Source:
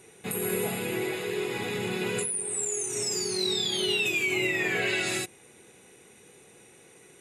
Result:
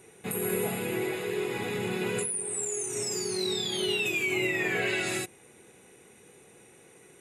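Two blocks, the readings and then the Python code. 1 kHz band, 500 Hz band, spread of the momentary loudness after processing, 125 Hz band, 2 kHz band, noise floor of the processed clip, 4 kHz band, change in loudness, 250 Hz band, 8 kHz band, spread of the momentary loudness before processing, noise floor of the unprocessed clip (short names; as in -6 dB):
-0.5 dB, 0.0 dB, 5 LU, 0.0 dB, -1.5 dB, -56 dBFS, -3.5 dB, -1.5 dB, 0.0 dB, -2.0 dB, 6 LU, -55 dBFS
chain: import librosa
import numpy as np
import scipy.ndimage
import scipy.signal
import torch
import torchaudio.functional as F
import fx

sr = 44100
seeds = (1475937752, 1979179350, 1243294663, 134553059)

y = fx.peak_eq(x, sr, hz=4600.0, db=-4.5, octaves=1.6)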